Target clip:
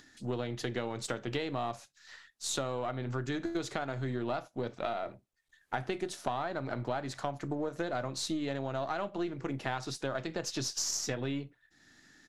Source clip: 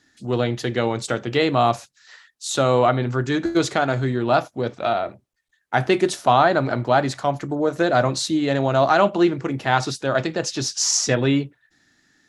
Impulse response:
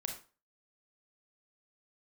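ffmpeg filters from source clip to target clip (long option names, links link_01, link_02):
-filter_complex "[0:a]aeval=exprs='if(lt(val(0),0),0.708*val(0),val(0))':channel_layout=same,asplit=2[link_01][link_02];[1:a]atrim=start_sample=2205,atrim=end_sample=3087[link_03];[link_02][link_03]afir=irnorm=-1:irlink=0,volume=-18dB[link_04];[link_01][link_04]amix=inputs=2:normalize=0,acompressor=threshold=-25dB:ratio=10,aresample=32000,aresample=44100,acompressor=mode=upward:threshold=-46dB:ratio=2.5,volume=-5.5dB"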